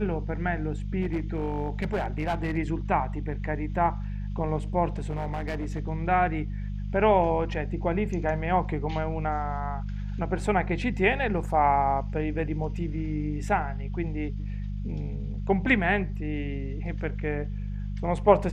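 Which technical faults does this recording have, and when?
hum 50 Hz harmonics 4 -32 dBFS
1.01–2.58 clipped -22.5 dBFS
4.94–5.8 clipped -26 dBFS

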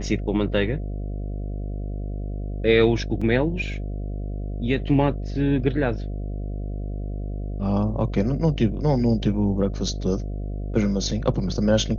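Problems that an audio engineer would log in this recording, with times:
buzz 50 Hz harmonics 14 -29 dBFS
3.21 gap 4.9 ms

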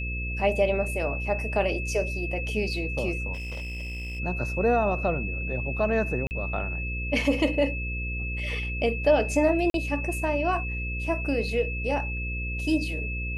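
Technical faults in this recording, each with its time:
buzz 60 Hz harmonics 9 -32 dBFS
tone 2600 Hz -33 dBFS
3.33–4.2 clipped -31.5 dBFS
6.27–6.31 gap 39 ms
9.7–9.74 gap 42 ms

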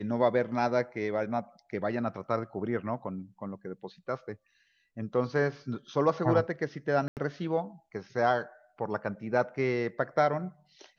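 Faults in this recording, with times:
7.08–7.17 gap 88 ms

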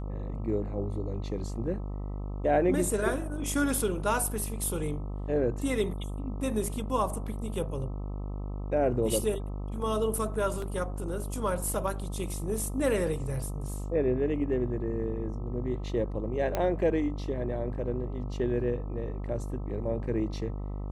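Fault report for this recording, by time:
buzz 50 Hz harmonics 26 -35 dBFS
10.62 gap 2.9 ms
16.55 pop -15 dBFS

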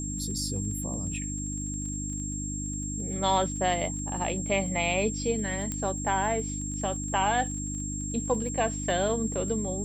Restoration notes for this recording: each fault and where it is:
crackle 25/s -38 dBFS
hum 50 Hz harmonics 6 -35 dBFS
tone 7500 Hz -35 dBFS
5.72 pop -18 dBFS

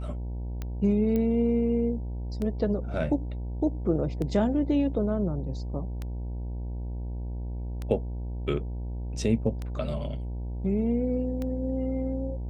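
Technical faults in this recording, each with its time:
buzz 60 Hz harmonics 16 -33 dBFS
tick 33 1/3 rpm -21 dBFS
1.16 pop -18 dBFS

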